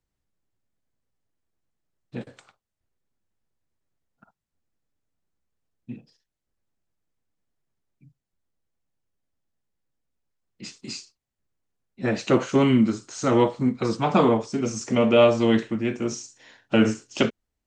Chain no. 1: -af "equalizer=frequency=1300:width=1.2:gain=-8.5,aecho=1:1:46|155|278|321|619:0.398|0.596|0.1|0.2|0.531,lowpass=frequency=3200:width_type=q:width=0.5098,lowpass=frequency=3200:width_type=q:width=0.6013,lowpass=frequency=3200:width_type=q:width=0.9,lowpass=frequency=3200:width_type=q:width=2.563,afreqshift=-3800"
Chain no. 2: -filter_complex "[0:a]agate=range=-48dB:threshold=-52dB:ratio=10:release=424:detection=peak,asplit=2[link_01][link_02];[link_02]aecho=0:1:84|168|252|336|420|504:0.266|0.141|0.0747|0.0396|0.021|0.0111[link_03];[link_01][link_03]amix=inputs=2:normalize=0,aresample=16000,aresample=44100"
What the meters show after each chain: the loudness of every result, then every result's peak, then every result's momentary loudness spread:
−17.0, −21.5 LKFS; −4.0, −5.5 dBFS; 19, 19 LU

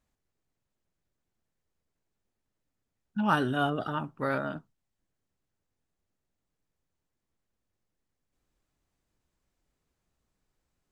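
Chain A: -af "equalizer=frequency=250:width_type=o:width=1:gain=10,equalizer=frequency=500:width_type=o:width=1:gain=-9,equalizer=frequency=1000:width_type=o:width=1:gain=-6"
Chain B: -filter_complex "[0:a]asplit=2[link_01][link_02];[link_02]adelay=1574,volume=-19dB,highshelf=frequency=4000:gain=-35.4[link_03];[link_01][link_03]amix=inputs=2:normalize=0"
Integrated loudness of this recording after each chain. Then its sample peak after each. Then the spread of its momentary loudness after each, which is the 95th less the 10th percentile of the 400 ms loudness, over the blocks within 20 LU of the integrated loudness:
−28.5, −30.0 LKFS; −16.0, −12.0 dBFS; 11, 22 LU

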